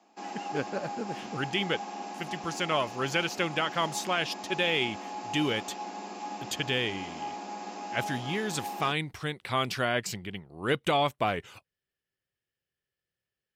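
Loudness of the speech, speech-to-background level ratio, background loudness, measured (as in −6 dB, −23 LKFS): −31.0 LKFS, 8.5 dB, −39.5 LKFS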